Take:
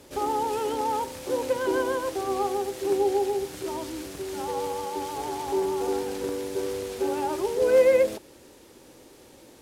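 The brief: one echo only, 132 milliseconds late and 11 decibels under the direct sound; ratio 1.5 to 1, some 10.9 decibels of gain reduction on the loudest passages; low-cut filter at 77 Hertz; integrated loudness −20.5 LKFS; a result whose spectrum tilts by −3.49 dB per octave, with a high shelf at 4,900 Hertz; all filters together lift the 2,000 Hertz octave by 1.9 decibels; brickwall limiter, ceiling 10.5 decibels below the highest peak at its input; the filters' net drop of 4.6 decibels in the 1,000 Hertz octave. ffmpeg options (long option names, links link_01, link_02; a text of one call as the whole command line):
ffmpeg -i in.wav -af "highpass=77,equalizer=frequency=1000:width_type=o:gain=-6.5,equalizer=frequency=2000:width_type=o:gain=4,highshelf=frequency=4900:gain=5,acompressor=threshold=-47dB:ratio=1.5,alimiter=level_in=7.5dB:limit=-24dB:level=0:latency=1,volume=-7.5dB,aecho=1:1:132:0.282,volume=19.5dB" out.wav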